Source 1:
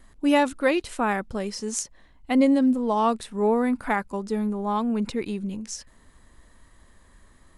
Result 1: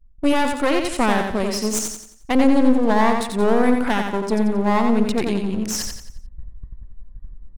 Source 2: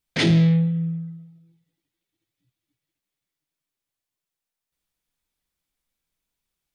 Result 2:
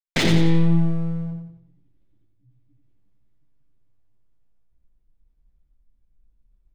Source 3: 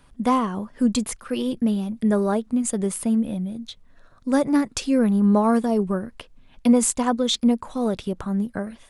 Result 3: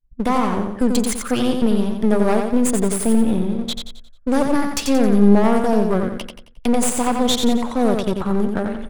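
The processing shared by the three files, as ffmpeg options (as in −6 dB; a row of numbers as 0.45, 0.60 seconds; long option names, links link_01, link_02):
-af "agate=range=-33dB:threshold=-45dB:ratio=3:detection=peak,anlmdn=0.0251,areverse,acompressor=mode=upward:threshold=-26dB:ratio=2.5,areverse,alimiter=limit=-15dB:level=0:latency=1:release=237,aeval=exprs='clip(val(0),-1,0.0178)':channel_layout=same,aecho=1:1:89|178|267|356|445:0.562|0.225|0.09|0.036|0.0144,volume=8dB"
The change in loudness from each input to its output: +4.5, −1.5, +3.5 LU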